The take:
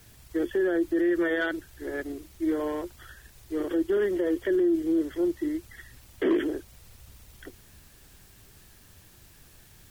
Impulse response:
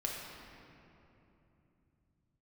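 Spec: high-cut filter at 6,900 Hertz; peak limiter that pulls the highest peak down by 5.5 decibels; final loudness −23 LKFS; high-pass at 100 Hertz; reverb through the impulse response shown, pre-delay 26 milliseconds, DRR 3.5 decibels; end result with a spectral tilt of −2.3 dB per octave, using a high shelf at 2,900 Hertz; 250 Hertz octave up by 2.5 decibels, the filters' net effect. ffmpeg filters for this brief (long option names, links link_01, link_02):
-filter_complex "[0:a]highpass=100,lowpass=6900,equalizer=frequency=250:width_type=o:gain=4,highshelf=frequency=2900:gain=8,alimiter=limit=-19dB:level=0:latency=1,asplit=2[link_01][link_02];[1:a]atrim=start_sample=2205,adelay=26[link_03];[link_02][link_03]afir=irnorm=-1:irlink=0,volume=-6.5dB[link_04];[link_01][link_04]amix=inputs=2:normalize=0,volume=4dB"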